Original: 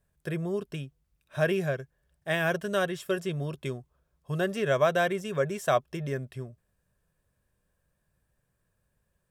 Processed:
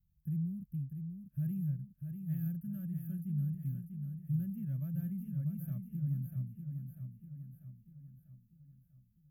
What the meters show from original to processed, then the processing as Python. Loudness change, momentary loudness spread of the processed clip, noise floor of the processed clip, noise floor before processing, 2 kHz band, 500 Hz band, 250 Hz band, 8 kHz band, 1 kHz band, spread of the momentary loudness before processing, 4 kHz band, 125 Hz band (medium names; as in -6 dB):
-9.5 dB, 13 LU, -70 dBFS, -77 dBFS, under -35 dB, under -35 dB, -3.0 dB, under -20 dB, under -40 dB, 16 LU, under -40 dB, +0.5 dB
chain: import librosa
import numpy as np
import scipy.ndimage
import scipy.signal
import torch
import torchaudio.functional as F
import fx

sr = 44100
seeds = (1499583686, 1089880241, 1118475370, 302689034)

y = scipy.signal.sosfilt(scipy.signal.cheby2(4, 40, [380.0, 8300.0], 'bandstop', fs=sr, output='sos'), x)
y = fx.echo_feedback(y, sr, ms=644, feedback_pct=50, wet_db=-7.0)